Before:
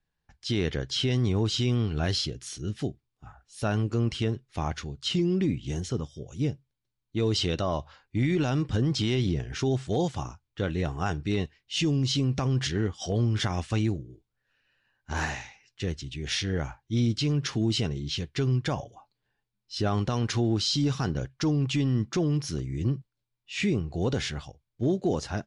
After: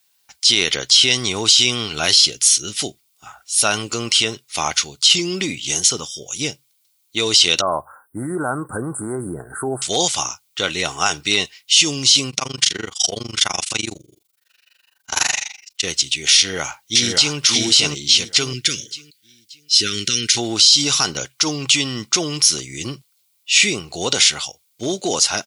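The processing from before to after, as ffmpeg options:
ffmpeg -i in.wav -filter_complex "[0:a]asettb=1/sr,asplit=3[link_01][link_02][link_03];[link_01]atrim=end=7.614[link_04];[link_02]atrim=start=7.61:end=9.82,asetpts=PTS-STARTPTS,afade=type=in:duration=0.004:curve=qsin,afade=type=out:start_time=2.206:duration=0.004:curve=qsin,asuperstop=centerf=3900:order=20:qfactor=0.56[link_05];[link_03]atrim=start=9.816[link_06];[link_04][link_05]acrossfade=duration=0.004:curve1=hsin:curve2=qsin[link_07];[link_07][link_06]acrossfade=duration=0.004:curve1=qsin:curve2=hsin,asettb=1/sr,asplit=3[link_08][link_09][link_10];[link_08]atrim=end=12.304[link_11];[link_09]atrim=start=12.3:end=15.84,asetpts=PTS-STARTPTS,afade=type=in:duration=0.004:curve=qsin,afade=type=out:start_time=3.536:duration=0.004:curve=qsin,tremolo=f=24:d=0.974[link_12];[link_10]atrim=start=15.836[link_13];[link_11][link_12]acrossfade=duration=0.004:curve1=hsin:curve2=qsin[link_14];[link_14][link_13]acrossfade=duration=0.004:curve1=qsin:curve2=hsin,asplit=2[link_15][link_16];[link_16]afade=type=in:start_time=16.37:duration=0.01,afade=type=out:start_time=17.36:duration=0.01,aecho=0:1:580|1160|1740|2320:0.794328|0.238298|0.0714895|0.0214469[link_17];[link_15][link_17]amix=inputs=2:normalize=0,asettb=1/sr,asplit=3[link_18][link_19][link_20];[link_18]atrim=end=18.534[link_21];[link_19]atrim=start=18.53:end=20.37,asetpts=PTS-STARTPTS,afade=type=in:duration=0.004:curve=qsin,afade=type=out:start_time=1.836:duration=0.004:curve=qsin,asuperstop=centerf=810:order=8:qfactor=0.73[link_22];[link_20]atrim=start=20.366[link_23];[link_21][link_22]acrossfade=duration=0.004:curve1=hsin:curve2=qsin[link_24];[link_24][link_23]acrossfade=duration=0.004:curve1=qsin:curve2=hsin,aderivative,bandreject=frequency=1700:width=5.5,alimiter=level_in=30dB:limit=-1dB:release=50:level=0:latency=1,volume=-1dB" out.wav

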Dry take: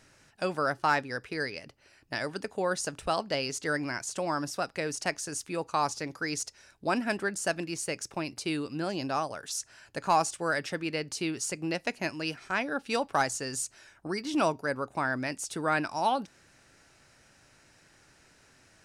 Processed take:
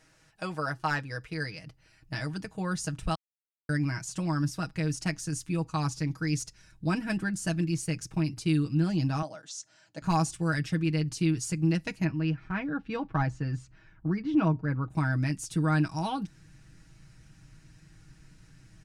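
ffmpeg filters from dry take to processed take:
ffmpeg -i in.wav -filter_complex "[0:a]asettb=1/sr,asplit=3[link_01][link_02][link_03];[link_01]atrim=end=9.224[link_04];[link_02]atrim=start=9.22:end=10.02,asetpts=PTS-STARTPTS,afade=type=in:duration=0.004:curve=qsin,afade=type=out:start_time=0.796:duration=0.004:curve=qsin,highpass=350,equalizer=frequency=420:width_type=q:width=4:gain=-8,equalizer=frequency=600:width_type=q:width=4:gain=8,equalizer=frequency=1100:width_type=q:width=4:gain=-6,equalizer=frequency=1700:width_type=q:width=4:gain=-6,equalizer=frequency=2500:width_type=q:width=4:gain=-7,equalizer=frequency=4900:width_type=q:width=4:gain=-4,lowpass=frequency=7400:width=0.5412,lowpass=frequency=7400:width=1.3066[link_05];[link_03]atrim=start=10.016[link_06];[link_04][link_05]acrossfade=duration=0.004:curve1=hsin:curve2=qsin[link_07];[link_07][link_06]acrossfade=duration=0.004:curve1=qsin:curve2=hsin,asettb=1/sr,asplit=3[link_08][link_09][link_10];[link_08]atrim=end=12.044[link_11];[link_09]atrim=start=12.04:end=14.9,asetpts=PTS-STARTPTS,afade=type=in:duration=0.004:curve=qsin,afade=type=out:start_time=2.856:duration=0.004:curve=qsin,lowpass=2200[link_12];[link_10]atrim=start=14.896[link_13];[link_11][link_12]acrossfade=duration=0.004:curve1=hsin:curve2=qsin[link_14];[link_14][link_13]acrossfade=duration=0.004:curve1=qsin:curve2=hsin,asplit=3[link_15][link_16][link_17];[link_15]atrim=end=3.15,asetpts=PTS-STARTPTS,afade=type=out:start_time=3.146:duration=0.004:curve=hsin[link_18];[link_16]atrim=start=3.15:end=3.69,asetpts=PTS-STARTPTS,volume=0[link_19];[link_17]atrim=start=3.69,asetpts=PTS-STARTPTS,afade=type=in:duration=0.004:curve=hsin[link_20];[link_18][link_19][link_20]concat=n=3:v=0:a=1,asubboost=boost=11.5:cutoff=160,aecho=1:1:6.3:0.73,volume=-4.5dB" out.wav

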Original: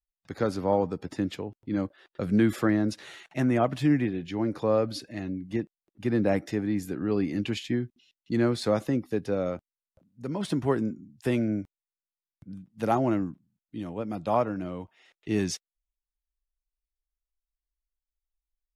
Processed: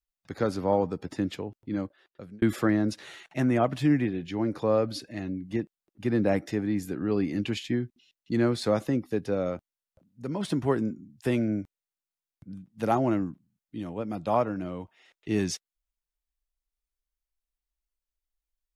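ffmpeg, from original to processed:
ffmpeg -i in.wav -filter_complex "[0:a]asplit=2[link_01][link_02];[link_01]atrim=end=2.42,asetpts=PTS-STARTPTS,afade=type=out:start_time=1.58:duration=0.84[link_03];[link_02]atrim=start=2.42,asetpts=PTS-STARTPTS,afade=type=in:duration=0.004:curve=hsin[link_04];[link_03][link_04]concat=n=2:v=0:a=1" out.wav

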